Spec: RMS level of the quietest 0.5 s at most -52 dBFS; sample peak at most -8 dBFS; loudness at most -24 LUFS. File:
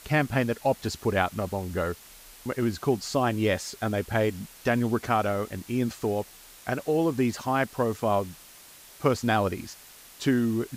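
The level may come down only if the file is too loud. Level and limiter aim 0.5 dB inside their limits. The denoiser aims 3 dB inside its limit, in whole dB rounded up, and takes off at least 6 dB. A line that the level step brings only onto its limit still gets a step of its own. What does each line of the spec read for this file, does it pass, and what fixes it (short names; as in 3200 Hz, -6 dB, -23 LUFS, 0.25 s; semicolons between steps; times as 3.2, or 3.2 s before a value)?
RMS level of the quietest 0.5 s -50 dBFS: fail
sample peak -8.5 dBFS: OK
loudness -27.5 LUFS: OK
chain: denoiser 6 dB, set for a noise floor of -50 dBFS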